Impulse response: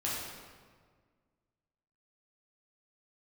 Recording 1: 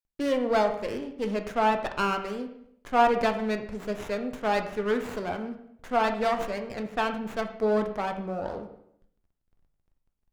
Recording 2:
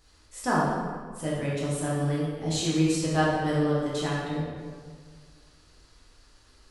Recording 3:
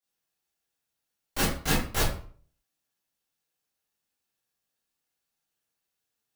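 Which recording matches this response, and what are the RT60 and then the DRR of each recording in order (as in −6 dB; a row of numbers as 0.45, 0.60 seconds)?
2; 0.70, 1.7, 0.50 seconds; 5.5, −7.0, −10.5 decibels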